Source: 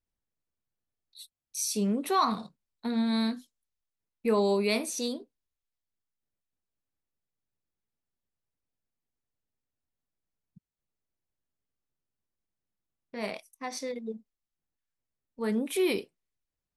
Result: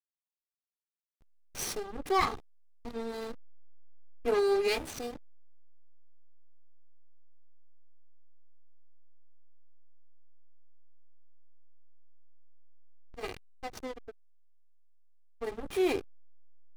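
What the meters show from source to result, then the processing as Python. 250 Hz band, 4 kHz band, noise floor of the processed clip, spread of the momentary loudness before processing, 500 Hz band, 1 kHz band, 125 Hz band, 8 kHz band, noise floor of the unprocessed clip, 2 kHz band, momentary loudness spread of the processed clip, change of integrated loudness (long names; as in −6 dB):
−9.5 dB, −4.5 dB, below −85 dBFS, 16 LU, −1.0 dB, −2.5 dB, can't be measured, −7.0 dB, below −85 dBFS, −1.0 dB, 18 LU, −3.0 dB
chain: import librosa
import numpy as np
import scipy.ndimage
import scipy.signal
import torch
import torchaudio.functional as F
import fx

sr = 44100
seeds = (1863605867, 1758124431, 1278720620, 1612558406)

y = fx.lower_of_two(x, sr, delay_ms=2.5)
y = fx.backlash(y, sr, play_db=-30.5)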